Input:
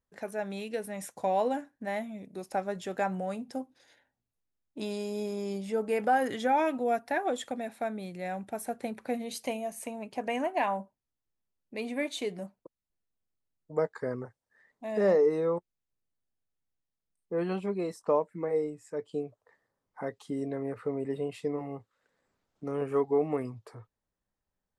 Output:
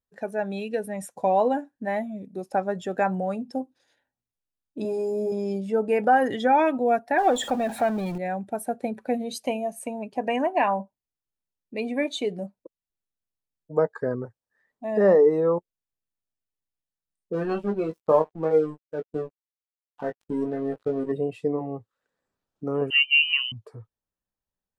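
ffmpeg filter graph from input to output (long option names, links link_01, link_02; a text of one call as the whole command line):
ffmpeg -i in.wav -filter_complex "[0:a]asettb=1/sr,asplit=3[link_01][link_02][link_03];[link_01]atrim=end=4.824[link_04];[link_02]atrim=start=4.82:end=5.32,asetpts=PTS-STARTPTS,afade=type=in:duration=0.004:curve=qsin,afade=type=out:start_time=0.496:duration=0.004:curve=qsin,equalizer=frequency=3400:width_type=o:width=0.97:gain=-14.5,asplit=2[link_05][link_06];[link_06]adelay=27,volume=-3.5dB[link_07];[link_05][link_07]amix=inputs=2:normalize=0,atrim=end_sample=22050[link_08];[link_03]atrim=start=5.316[link_09];[link_04][link_08]acrossfade=duration=0.004:curve1=hsin:curve2=qsin[link_10];[link_10][link_09]acrossfade=duration=0.004:curve1=qsin:curve2=hsin,asettb=1/sr,asplit=3[link_11][link_12][link_13];[link_11]atrim=end=7.184[link_14];[link_12]atrim=start=7.18:end=8.18,asetpts=PTS-STARTPTS,afade=type=in:duration=0.004:curve=qsin,afade=type=out:start_time=0.996:duration=0.004:curve=qsin,aeval=exprs='val(0)+0.5*0.0168*sgn(val(0))':channel_layout=same,equalizer=frequency=800:width_type=o:width=0.34:gain=5[link_15];[link_13]atrim=start=8.176[link_16];[link_14][link_15]acrossfade=duration=0.004:curve1=hsin:curve2=qsin[link_17];[link_17][link_16]acrossfade=duration=0.004:curve1=qsin:curve2=hsin,asettb=1/sr,asplit=3[link_18][link_19][link_20];[link_18]atrim=end=17.334[link_21];[link_19]atrim=start=17.33:end=21.12,asetpts=PTS-STARTPTS,afade=type=in:duration=0.004:curve=qsin,afade=type=out:start_time=3.786:duration=0.004:curve=qsin,aecho=1:1:73:0.0794,atrim=end_sample=167139,aeval=exprs='sgn(val(0))*max(abs(val(0))-0.00708,0)':channel_layout=same,asplit=2[link_22][link_23];[link_23]adelay=19,volume=-5dB[link_24];[link_22][link_24]amix=inputs=2:normalize=0,atrim=end_sample=167139[link_25];[link_20]atrim=start=21.116[link_26];[link_21][link_25]acrossfade=duration=0.004:curve1=hsin:curve2=qsin[link_27];[link_27][link_26]acrossfade=duration=0.004:curve1=qsin:curve2=hsin,asettb=1/sr,asplit=3[link_28][link_29][link_30];[link_28]atrim=end=22.904[link_31];[link_29]atrim=start=22.9:end=23.52,asetpts=PTS-STARTPTS,afade=type=in:duration=0.004:curve=qsin,afade=type=out:start_time=0.616:duration=0.004:curve=qsin,lowpass=frequency=2700:width_type=q:width=0.5098,lowpass=frequency=2700:width_type=q:width=0.6013,lowpass=frequency=2700:width_type=q:width=0.9,lowpass=frequency=2700:width_type=q:width=2.563,afreqshift=-3200,bandreject=frequency=238.6:width_type=h:width=4,bandreject=frequency=477.2:width_type=h:width=4,bandreject=frequency=715.8:width_type=h:width=4,bandreject=frequency=954.4:width_type=h:width=4,bandreject=frequency=1193:width_type=h:width=4[link_32];[link_30]atrim=start=23.516[link_33];[link_31][link_32]acrossfade=duration=0.004:curve1=hsin:curve2=qsin[link_34];[link_34][link_33]acrossfade=duration=0.004:curve1=qsin:curve2=hsin,afftdn=noise_reduction=12:noise_floor=-42,bandreject=frequency=2100:width=11,volume=6.5dB" out.wav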